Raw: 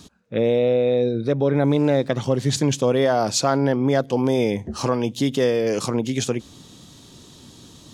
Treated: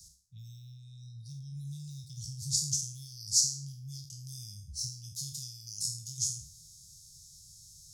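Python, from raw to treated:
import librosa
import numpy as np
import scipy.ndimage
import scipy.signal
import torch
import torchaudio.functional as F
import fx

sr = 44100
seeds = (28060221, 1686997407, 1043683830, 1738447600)

y = fx.spec_trails(x, sr, decay_s=0.49)
y = scipy.signal.sosfilt(scipy.signal.cheby1(4, 1.0, [160.0, 5100.0], 'bandstop', fs=sr, output='sos'), y)
y = fx.tone_stack(y, sr, knobs='10-0-10')
y = y * 10.0 ** (-1.5 / 20.0)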